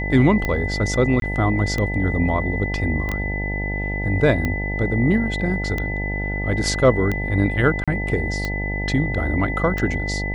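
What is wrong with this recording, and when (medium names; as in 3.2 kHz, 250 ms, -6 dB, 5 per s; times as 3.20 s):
buzz 50 Hz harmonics 18 -26 dBFS
tick 45 rpm -11 dBFS
whine 2 kHz -27 dBFS
1.20–1.22 s: dropout 22 ms
3.09 s: pop -15 dBFS
7.84–7.88 s: dropout 36 ms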